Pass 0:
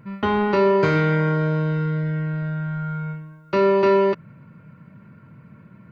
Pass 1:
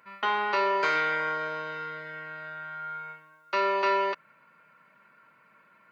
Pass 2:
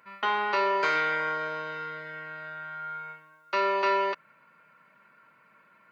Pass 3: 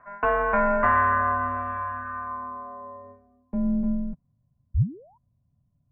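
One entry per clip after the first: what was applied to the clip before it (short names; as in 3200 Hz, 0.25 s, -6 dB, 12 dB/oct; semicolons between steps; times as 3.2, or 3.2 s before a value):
HPF 900 Hz 12 dB/oct
nothing audible
painted sound rise, 4.74–5.18, 410–1400 Hz -26 dBFS; mistuned SSB -370 Hz 210–3200 Hz; low-pass sweep 1400 Hz -> 120 Hz, 2.08–4.37; gain +1.5 dB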